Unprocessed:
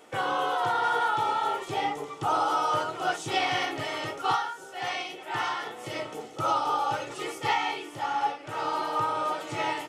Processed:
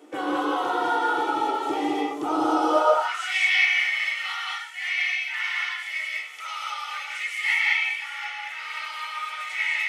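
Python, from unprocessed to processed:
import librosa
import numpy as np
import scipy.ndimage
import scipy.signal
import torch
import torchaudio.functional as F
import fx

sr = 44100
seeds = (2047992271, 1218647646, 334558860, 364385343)

y = fx.filter_sweep_highpass(x, sr, from_hz=300.0, to_hz=2100.0, start_s=2.57, end_s=3.09, q=7.0)
y = fx.rev_gated(y, sr, seeds[0], gate_ms=240, shape='rising', drr_db=-1.5)
y = y * librosa.db_to_amplitude(-3.5)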